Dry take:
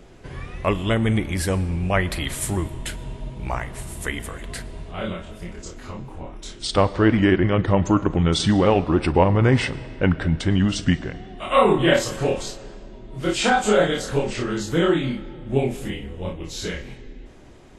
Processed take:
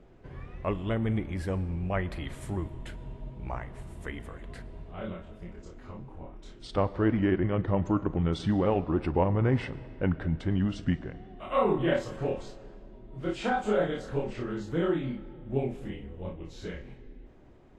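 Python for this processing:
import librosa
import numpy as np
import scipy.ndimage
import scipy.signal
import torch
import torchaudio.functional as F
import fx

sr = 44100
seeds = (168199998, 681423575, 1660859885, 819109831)

y = fx.lowpass(x, sr, hz=1300.0, slope=6)
y = y * 10.0 ** (-8.0 / 20.0)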